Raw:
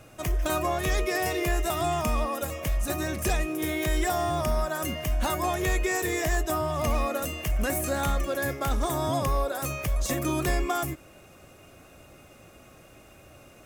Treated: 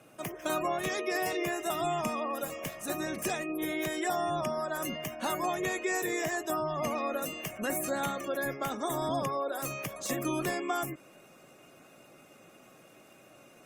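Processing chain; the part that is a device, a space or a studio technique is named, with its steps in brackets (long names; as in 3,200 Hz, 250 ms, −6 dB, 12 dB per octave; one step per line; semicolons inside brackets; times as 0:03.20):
noise-suppressed video call (high-pass filter 150 Hz 24 dB per octave; gate on every frequency bin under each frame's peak −30 dB strong; level −3.5 dB; Opus 32 kbit/s 48,000 Hz)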